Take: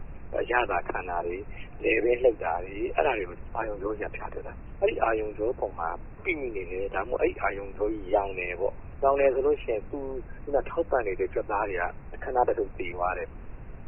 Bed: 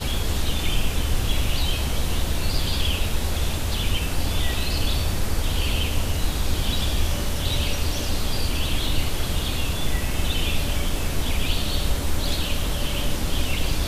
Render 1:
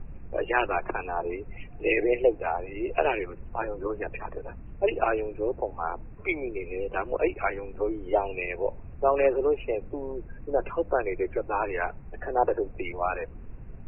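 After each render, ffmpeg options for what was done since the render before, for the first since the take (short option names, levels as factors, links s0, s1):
-af "afftdn=nr=8:nf=-43"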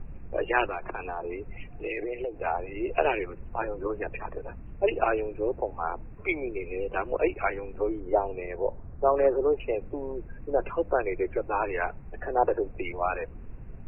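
-filter_complex "[0:a]asettb=1/sr,asplit=3[s0][s1][s2];[s0]atrim=end=0.654[s3];[s1]atrim=start=0.65:end=2.4,asetpts=PTS-STARTPTS,afade=t=in:d=0.004:c=qsin,afade=t=out:st=1.746:d=0.004:c=qsin,acompressor=threshold=0.0355:ratio=6:attack=3.2:release=140:knee=1:detection=peak[s4];[s2]atrim=start=2.396[s5];[s3][s4]acrossfade=d=0.004:c1=hsin:c2=qsin[s6];[s6][s5]acrossfade=d=0.004:c1=qsin:c2=hsin,asettb=1/sr,asplit=3[s7][s8][s9];[s7]atrim=end=8.004[s10];[s8]atrim=start=8:end=9.6,asetpts=PTS-STARTPTS,afade=t=in:d=0.004:c=qsin,afade=t=out:st=1.596:d=0.004:c=qsin,lowpass=f=1700:w=0.5412,lowpass=f=1700:w=1.3066[s11];[s9]atrim=start=9.596[s12];[s10][s11]acrossfade=d=0.004:c1=hsin:c2=qsin[s13];[s13][s12]acrossfade=d=0.004:c1=qsin:c2=hsin"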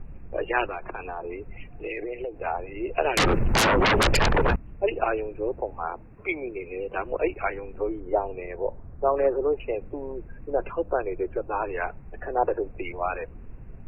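-filter_complex "[0:a]asettb=1/sr,asplit=3[s0][s1][s2];[s0]atrim=end=3.174[s3];[s1]atrim=start=3.17:end=4.56,asetpts=PTS-STARTPTS,afade=t=in:d=0.004:c=qsin,afade=t=out:st=1.386:d=0.004:c=qsin,aeval=exprs='0.15*sin(PI/2*8.91*val(0)/0.15)':c=same[s4];[s2]atrim=start=4.556[s5];[s3][s4]acrossfade=d=0.004:c1=hsin:c2=qsin[s6];[s6][s5]acrossfade=d=0.004:c1=qsin:c2=hsin,asettb=1/sr,asplit=3[s7][s8][s9];[s7]atrim=end=5.864[s10];[s8]atrim=start=5.86:end=6.98,asetpts=PTS-STARTPTS,afade=t=in:d=0.004:c=qsin,afade=t=out:st=1.116:d=0.004:c=qsin,lowshelf=f=65:g=-10[s11];[s9]atrim=start=6.976[s12];[s10][s11]acrossfade=d=0.004:c1=hsin:c2=qsin[s13];[s13][s12]acrossfade=d=0.004:c1=qsin:c2=hsin,asettb=1/sr,asplit=3[s14][s15][s16];[s14]atrim=end=10.724[s17];[s15]atrim=start=10.72:end=11.77,asetpts=PTS-STARTPTS,afade=t=in:d=0.004:c=qsin,afade=t=out:st=1.046:d=0.004:c=qsin,equalizer=f=2100:w=4.5:g=-14[s18];[s16]atrim=start=11.766[s19];[s17][s18]acrossfade=d=0.004:c1=hsin:c2=qsin[s20];[s20][s19]acrossfade=d=0.004:c1=qsin:c2=hsin"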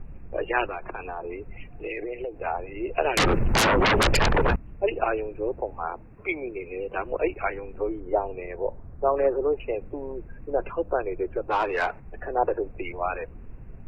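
-filter_complex "[0:a]asettb=1/sr,asplit=3[s0][s1][s2];[s0]atrim=end=11.484[s3];[s1]atrim=start=11.48:end=12,asetpts=PTS-STARTPTS,afade=t=in:d=0.004:c=qsin,afade=t=out:st=0.516:d=0.004:c=qsin,asplit=2[s4][s5];[s5]highpass=f=720:p=1,volume=5.62,asoftclip=type=tanh:threshold=0.168[s6];[s4][s6]amix=inputs=2:normalize=0,lowpass=f=3700:p=1,volume=0.501[s7];[s2]atrim=start=11.996[s8];[s3][s7]acrossfade=d=0.004:c1=hsin:c2=qsin[s9];[s9][s8]acrossfade=d=0.004:c1=qsin:c2=hsin"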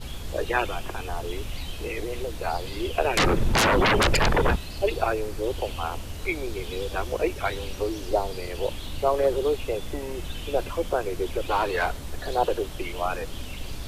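-filter_complex "[1:a]volume=0.251[s0];[0:a][s0]amix=inputs=2:normalize=0"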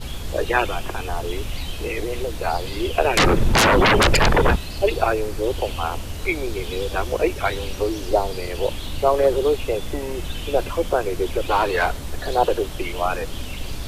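-af "volume=1.78"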